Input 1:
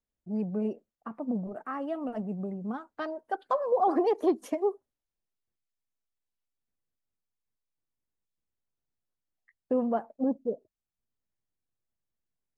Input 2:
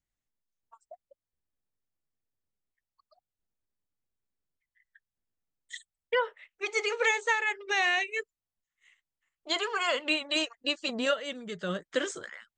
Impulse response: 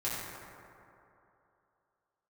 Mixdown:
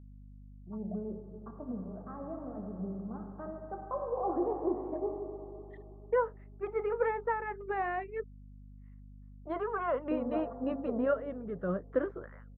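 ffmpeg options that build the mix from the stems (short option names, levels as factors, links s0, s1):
-filter_complex "[0:a]adelay=400,volume=0.282,asplit=2[s0][s1];[s1]volume=0.562[s2];[1:a]volume=1.12[s3];[2:a]atrim=start_sample=2205[s4];[s2][s4]afir=irnorm=-1:irlink=0[s5];[s0][s3][s5]amix=inputs=3:normalize=0,lowpass=f=1200:w=0.5412,lowpass=f=1200:w=1.3066,equalizer=f=830:t=o:w=0.77:g=-2.5,aeval=exprs='val(0)+0.00316*(sin(2*PI*50*n/s)+sin(2*PI*2*50*n/s)/2+sin(2*PI*3*50*n/s)/3+sin(2*PI*4*50*n/s)/4+sin(2*PI*5*50*n/s)/5)':c=same"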